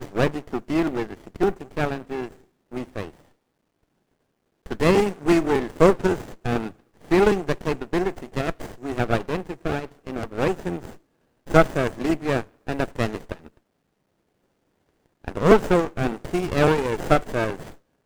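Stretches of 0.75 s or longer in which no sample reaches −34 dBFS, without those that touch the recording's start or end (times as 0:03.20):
0:03.10–0:04.66
0:13.46–0:15.25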